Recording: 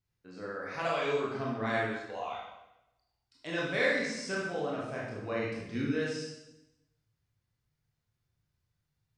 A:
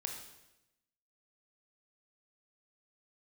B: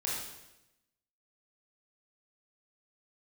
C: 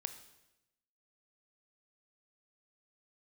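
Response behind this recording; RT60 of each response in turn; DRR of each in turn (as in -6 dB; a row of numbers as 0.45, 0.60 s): B; 0.95, 0.95, 0.95 s; 2.0, -5.5, 9.0 dB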